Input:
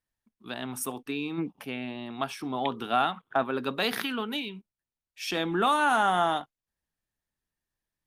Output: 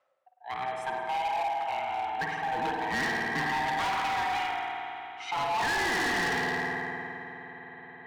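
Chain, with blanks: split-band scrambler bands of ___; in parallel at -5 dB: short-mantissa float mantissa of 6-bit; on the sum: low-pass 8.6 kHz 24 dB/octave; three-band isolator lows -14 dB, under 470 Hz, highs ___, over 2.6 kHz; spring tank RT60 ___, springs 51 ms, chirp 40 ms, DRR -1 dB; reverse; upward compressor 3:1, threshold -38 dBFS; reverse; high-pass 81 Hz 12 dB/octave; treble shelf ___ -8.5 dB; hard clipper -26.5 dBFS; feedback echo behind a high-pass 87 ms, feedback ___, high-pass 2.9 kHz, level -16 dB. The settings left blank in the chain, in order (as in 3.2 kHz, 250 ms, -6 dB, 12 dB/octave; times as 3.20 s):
500 Hz, -13 dB, 3.2 s, 4.1 kHz, 70%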